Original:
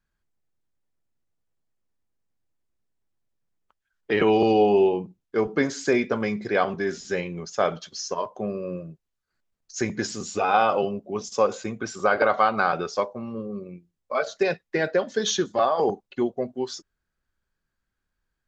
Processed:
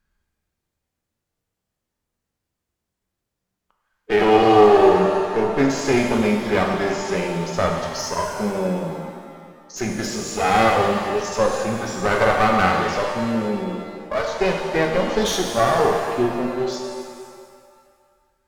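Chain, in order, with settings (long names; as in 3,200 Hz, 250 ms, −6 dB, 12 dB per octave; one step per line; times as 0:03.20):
asymmetric clip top −31 dBFS
harmonic and percussive parts rebalanced harmonic +8 dB
reverb with rising layers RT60 1.9 s, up +7 semitones, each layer −8 dB, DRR 2 dB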